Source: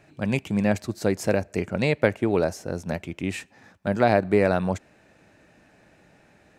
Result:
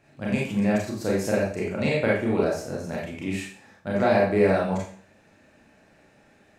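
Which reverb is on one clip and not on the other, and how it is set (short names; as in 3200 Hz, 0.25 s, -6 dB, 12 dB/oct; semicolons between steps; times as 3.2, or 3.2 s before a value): Schroeder reverb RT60 0.47 s, combs from 28 ms, DRR -5 dB; gain -6.5 dB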